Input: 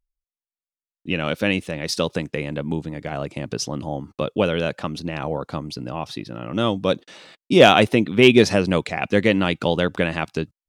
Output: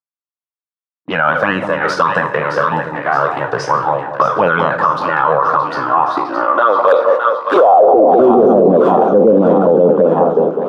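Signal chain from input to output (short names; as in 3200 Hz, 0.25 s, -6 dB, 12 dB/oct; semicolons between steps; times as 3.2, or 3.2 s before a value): spectral trails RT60 0.36 s; high-pass sweep 120 Hz -> 490 Hz, 5.83–6.56; envelope flanger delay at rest 6.7 ms, full sweep at -11 dBFS; in parallel at -10.5 dB: wrapped overs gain 6.5 dB; on the sum: gate -35 dBFS, range -25 dB; resonant high shelf 1600 Hz -12.5 dB, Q 3; band-pass sweep 1800 Hz -> 200 Hz, 7.48–8.15; on a send: split-band echo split 990 Hz, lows 0.2 s, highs 0.617 s, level -9 dB; on the sum: maximiser +27 dB; gain -1 dB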